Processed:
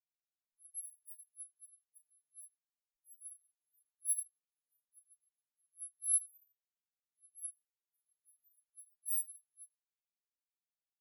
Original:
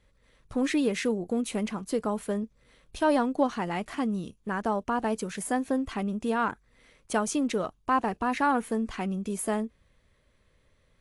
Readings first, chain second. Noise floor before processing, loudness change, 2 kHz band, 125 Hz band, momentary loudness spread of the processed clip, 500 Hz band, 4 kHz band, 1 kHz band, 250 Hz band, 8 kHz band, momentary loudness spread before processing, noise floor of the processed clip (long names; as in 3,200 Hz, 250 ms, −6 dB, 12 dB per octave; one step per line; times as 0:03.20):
−67 dBFS, −8.5 dB, below −40 dB, below −40 dB, 23 LU, below −40 dB, below −40 dB, below −40 dB, below −40 dB, +1.0 dB, 7 LU, below −85 dBFS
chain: samples in bit-reversed order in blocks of 256 samples
downward compressor 2.5 to 1, threshold −44 dBFS, peak gain reduction 16.5 dB
brickwall limiter −35.5 dBFS, peak gain reduction 10.5 dB
low-pass that shuts in the quiet parts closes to 1,700 Hz, open at −39.5 dBFS
high-shelf EQ 6,800 Hz +12 dB
reverb reduction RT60 0.78 s
amplitude tremolo 0.98 Hz, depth 37%
flat-topped bell 5,000 Hz −15.5 dB
four-comb reverb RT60 0.63 s, combs from 29 ms, DRR 1.5 dB
every bin expanded away from the loudest bin 4 to 1